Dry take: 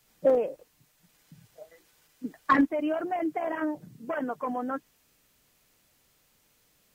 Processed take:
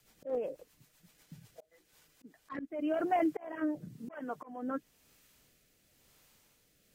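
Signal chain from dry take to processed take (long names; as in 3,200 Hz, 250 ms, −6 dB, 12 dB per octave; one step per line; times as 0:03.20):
rotating-speaker cabinet horn 8 Hz, later 1 Hz, at 0:01.43
volume swells 417 ms
level +2 dB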